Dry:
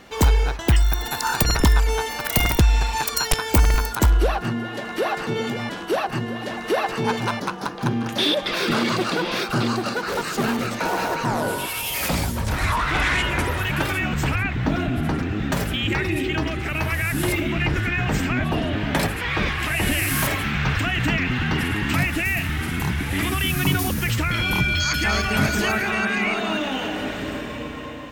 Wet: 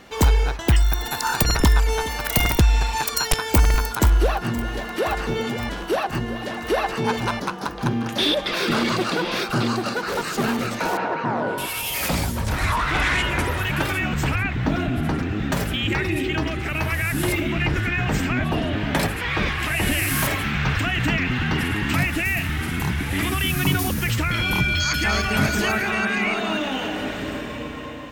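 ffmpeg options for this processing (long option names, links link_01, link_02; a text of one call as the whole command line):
ffmpeg -i in.wav -filter_complex "[0:a]asplit=2[link_01][link_02];[link_02]afade=type=in:start_time=1.5:duration=0.01,afade=type=out:start_time=2.16:duration=0.01,aecho=0:1:420|840:0.141254|0.0211881[link_03];[link_01][link_03]amix=inputs=2:normalize=0,asplit=2[link_04][link_05];[link_05]afade=type=in:start_time=3.37:duration=0.01,afade=type=out:start_time=4.3:duration=0.01,aecho=0:1:520|1040|1560|2080|2600|3120|3640|4160|4680|5200:0.16788|0.12591|0.0944327|0.0708245|0.0531184|0.0398388|0.0298791|0.0224093|0.016807|0.0126052[link_06];[link_04][link_06]amix=inputs=2:normalize=0,asettb=1/sr,asplit=3[link_07][link_08][link_09];[link_07]atrim=end=10.974[link_10];[link_08]atrim=start=10.97:end=11.58,asetpts=PTS-STARTPTS,afade=type=in:duration=0.004:curve=qsin,afade=type=out:start_time=0.606:duration=0.004:curve=qsin,highpass=140,lowpass=2300[link_11];[link_09]atrim=start=11.576[link_12];[link_10][link_11]acrossfade=duration=0.004:curve1=hsin:curve2=qsin[link_13];[link_13][link_12]acrossfade=duration=0.004:curve1=qsin:curve2=hsin" out.wav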